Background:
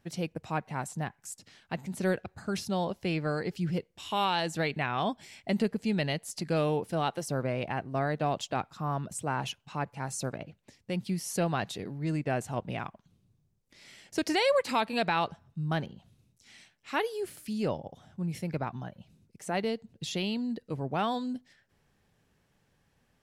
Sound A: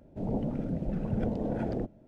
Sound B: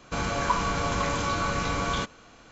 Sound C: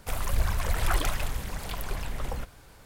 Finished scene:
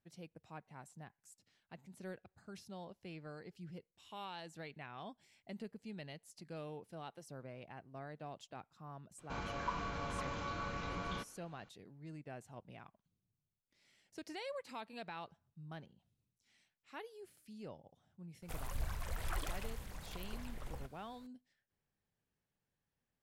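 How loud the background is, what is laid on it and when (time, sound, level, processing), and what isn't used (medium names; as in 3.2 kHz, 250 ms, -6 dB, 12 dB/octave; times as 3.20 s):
background -19 dB
9.18 s: add B -14 dB + low-pass 4.4 kHz
18.42 s: add C -14 dB
not used: A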